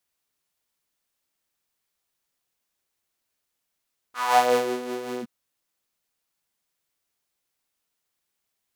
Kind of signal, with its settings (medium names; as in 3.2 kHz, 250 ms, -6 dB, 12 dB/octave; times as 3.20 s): synth patch with tremolo B3, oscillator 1 saw, interval -12 st, detune 20 cents, oscillator 2 level -2 dB, filter highpass, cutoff 160 Hz, Q 4.5, filter envelope 3 oct, filter decay 0.53 s, attack 188 ms, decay 0.44 s, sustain -15 dB, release 0.05 s, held 1.07 s, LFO 5.4 Hz, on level 5 dB